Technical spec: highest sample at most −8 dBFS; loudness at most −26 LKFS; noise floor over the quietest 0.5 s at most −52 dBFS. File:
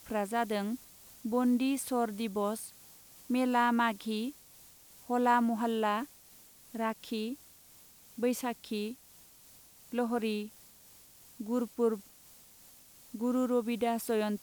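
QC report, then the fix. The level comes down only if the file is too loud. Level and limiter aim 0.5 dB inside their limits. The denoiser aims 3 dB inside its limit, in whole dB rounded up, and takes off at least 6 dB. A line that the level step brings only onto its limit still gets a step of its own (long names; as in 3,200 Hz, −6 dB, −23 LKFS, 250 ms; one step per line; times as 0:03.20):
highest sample −15.0 dBFS: in spec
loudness −32.5 LKFS: in spec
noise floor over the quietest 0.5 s −58 dBFS: in spec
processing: no processing needed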